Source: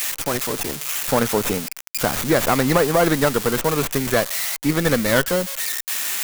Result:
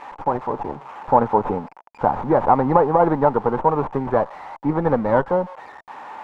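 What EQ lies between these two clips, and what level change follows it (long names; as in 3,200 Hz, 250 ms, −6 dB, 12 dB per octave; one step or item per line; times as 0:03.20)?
low-pass with resonance 880 Hz, resonance Q 5.3
notch filter 670 Hz, Q 12
−2.0 dB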